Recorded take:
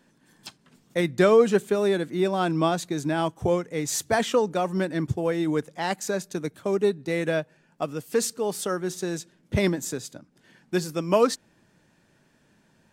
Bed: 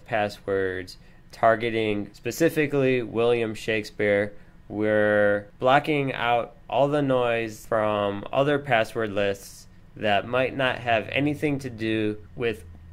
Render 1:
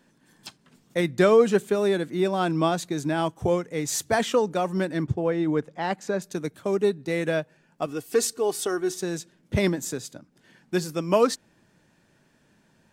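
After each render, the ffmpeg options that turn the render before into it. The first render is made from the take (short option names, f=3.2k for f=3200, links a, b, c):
-filter_complex "[0:a]asettb=1/sr,asplit=3[a][b][c];[a]atrim=end=5.044[d];[b]atrim=start=5.04:end=6.22,asetpts=PTS-STARTPTS,afade=t=in:d=0.004:c=qsin,afade=t=out:st=1.176:d=0.004:c=qsin,aemphasis=mode=reproduction:type=75fm[e];[c]atrim=start=6.216[f];[d][e]acrossfade=d=0.004:c1=hsin:c2=qsin[g];[g][f]acrossfade=d=0.004:c1=qsin:c2=hsin,asettb=1/sr,asplit=3[h][i][j];[h]atrim=end=7.864[k];[i]atrim=start=7.86:end=9.01,asetpts=PTS-STARTPTS,afade=t=in:d=0.004:c=qsin,afade=t=out:st=1.146:d=0.004:c=qsin,aecho=1:1:2.7:0.65,atrim=end_sample=50715[l];[j]atrim=start=9.006[m];[k][l]acrossfade=d=0.004:c1=hsin:c2=qsin[n];[n][m]acrossfade=d=0.004:c1=qsin:c2=hsin"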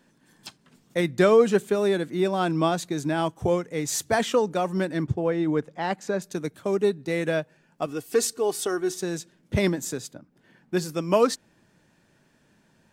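-filter_complex "[0:a]asettb=1/sr,asplit=3[a][b][c];[a]atrim=end=10.074[d];[b]atrim=start=10.07:end=10.77,asetpts=PTS-STARTPTS,afade=t=in:d=0.004:c=qsin,afade=t=out:st=0.696:d=0.004:c=qsin,equalizer=f=7k:t=o:w=2.4:g=-9[e];[c]atrim=start=10.766[f];[d][e]acrossfade=d=0.004:c1=hsin:c2=qsin[g];[g][f]acrossfade=d=0.004:c1=qsin:c2=hsin"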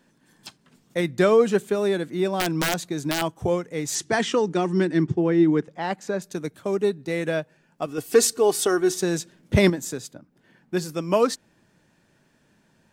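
-filter_complex "[0:a]asplit=3[a][b][c];[a]afade=t=out:st=2.37:d=0.02[d];[b]aeval=exprs='(mod(5.62*val(0)+1,2)-1)/5.62':c=same,afade=t=in:st=2.37:d=0.02,afade=t=out:st=3.21:d=0.02[e];[c]afade=t=in:st=3.21:d=0.02[f];[d][e][f]amix=inputs=3:normalize=0,asettb=1/sr,asplit=3[g][h][i];[g]atrim=end=3.954[j];[h]atrim=start=3.95:end=5.68,asetpts=PTS-STARTPTS,afade=t=in:d=0.004:c=qsin,afade=t=out:st=1.726:d=0.004:c=qsin,highpass=120,equalizer=f=170:t=q:w=4:g=7,equalizer=f=350:t=q:w=4:g=10,equalizer=f=570:t=q:w=4:g=-6,equalizer=f=1.9k:t=q:w=4:g=4,equalizer=f=3k:t=q:w=4:g=3,equalizer=f=5.4k:t=q:w=4:g=4,lowpass=f=9.2k:w=0.5412,lowpass=f=9.2k:w=1.3066[k];[i]atrim=start=5.676[l];[j][k]acrossfade=d=0.004:c1=hsin:c2=qsin[m];[m][l]acrossfade=d=0.004:c1=qsin:c2=hsin,asplit=3[n][o][p];[n]atrim=end=7.982[q];[o]atrim=start=7.978:end=9.702,asetpts=PTS-STARTPTS,volume=5.5dB[r];[p]atrim=start=9.698[s];[q][r]acrossfade=d=0.004:c1=hsin:c2=hsin[t];[t][s]acrossfade=d=0.004:c1=hsin:c2=hsin"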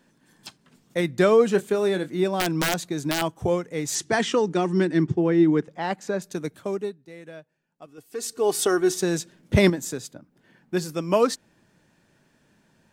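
-filter_complex "[0:a]asettb=1/sr,asplit=3[a][b][c];[a]atrim=end=1.514[d];[b]atrim=start=1.51:end=2.24,asetpts=PTS-STARTPTS,afade=t=in:d=0.004:c=qsin,afade=t=out:st=0.726:d=0.004:c=qsin,asplit=2[e][f];[f]adelay=27,volume=-12dB[g];[e][g]amix=inputs=2:normalize=0,atrim=end_sample=32193[h];[c]atrim=start=2.236[i];[d][h]acrossfade=d=0.004:c1=hsin:c2=qsin[j];[j][i]acrossfade=d=0.004:c1=qsin:c2=hsin,asplit=3[k][l][m];[k]atrim=end=6.98,asetpts=PTS-STARTPTS,afade=t=out:st=6.57:d=0.41:silence=0.149624[n];[l]atrim=start=6.98:end=8.18,asetpts=PTS-STARTPTS,volume=-16.5dB[o];[m]atrim=start=8.18,asetpts=PTS-STARTPTS,afade=t=in:d=0.41:silence=0.149624[p];[n][o][p]concat=n=3:v=0:a=1"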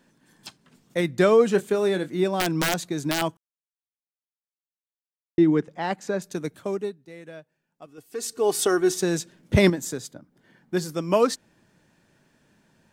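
-filter_complex "[0:a]asettb=1/sr,asplit=3[a][b][c];[a]atrim=end=9.864[d];[b]atrim=start=9.86:end=11.04,asetpts=PTS-STARTPTS,afade=t=in:d=0.004:c=qsin,afade=t=out:st=1.176:d=0.004:c=qsin,bandreject=f=2.6k:w=12[e];[c]atrim=start=11.036[f];[d][e]acrossfade=d=0.004:c1=hsin:c2=qsin[g];[g][f]acrossfade=d=0.004:c1=qsin:c2=hsin,asplit=3[h][i][j];[h]atrim=end=3.37,asetpts=PTS-STARTPTS,afade=t=out:st=3.366:d=0.004:c=hsin[k];[i]atrim=start=3.37:end=5.38,asetpts=PTS-STARTPTS,volume=0[l];[j]atrim=start=5.38,asetpts=PTS-STARTPTS,afade=t=in:d=0.004:c=hsin[m];[k][l][m]concat=n=3:v=0:a=1"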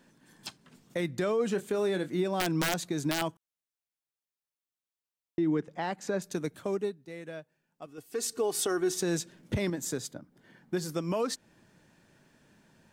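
-af "acompressor=threshold=-31dB:ratio=1.5,alimiter=limit=-20.5dB:level=0:latency=1:release=78"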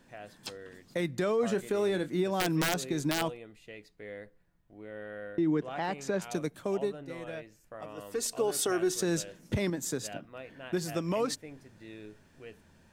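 -filter_complex "[1:a]volume=-22dB[a];[0:a][a]amix=inputs=2:normalize=0"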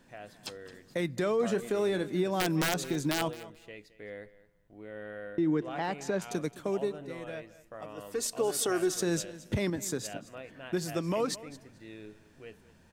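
-af "aecho=1:1:217|434:0.133|0.024"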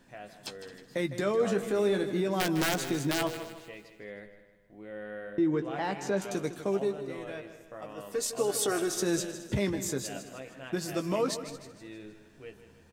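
-filter_complex "[0:a]asplit=2[a][b];[b]adelay=15,volume=-8dB[c];[a][c]amix=inputs=2:normalize=0,asplit=2[d][e];[e]aecho=0:1:156|312|468|624|780:0.251|0.118|0.0555|0.0261|0.0123[f];[d][f]amix=inputs=2:normalize=0"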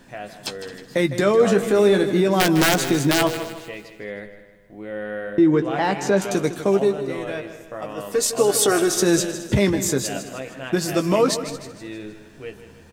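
-af "volume=11dB"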